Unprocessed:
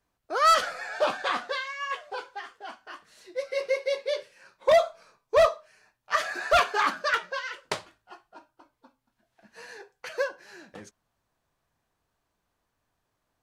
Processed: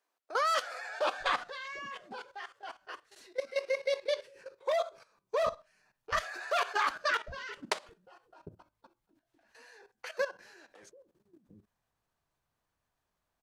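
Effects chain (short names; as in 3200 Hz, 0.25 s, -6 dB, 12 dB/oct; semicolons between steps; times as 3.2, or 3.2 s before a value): bands offset in time highs, lows 0.75 s, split 320 Hz; level quantiser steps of 14 dB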